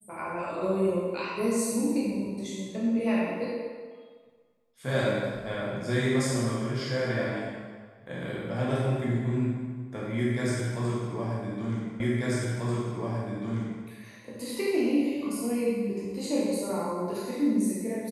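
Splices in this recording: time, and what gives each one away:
12.00 s: repeat of the last 1.84 s

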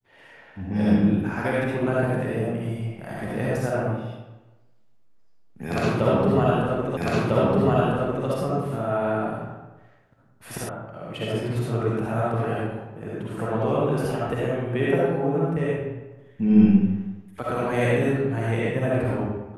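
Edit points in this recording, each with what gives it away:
6.97 s: repeat of the last 1.3 s
10.69 s: sound stops dead

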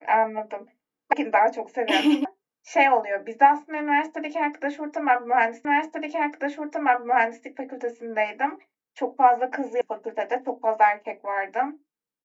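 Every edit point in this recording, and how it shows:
1.13 s: sound stops dead
2.25 s: sound stops dead
5.65 s: repeat of the last 1.79 s
9.81 s: sound stops dead

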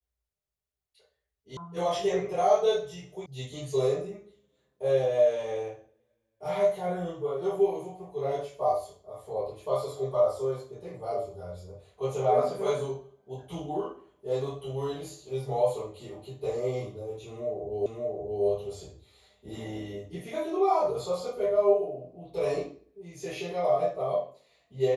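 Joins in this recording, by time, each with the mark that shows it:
1.57 s: sound stops dead
3.26 s: sound stops dead
17.86 s: repeat of the last 0.58 s

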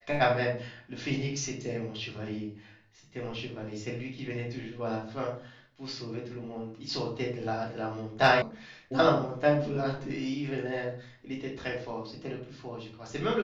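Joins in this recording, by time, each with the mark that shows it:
8.42 s: sound stops dead

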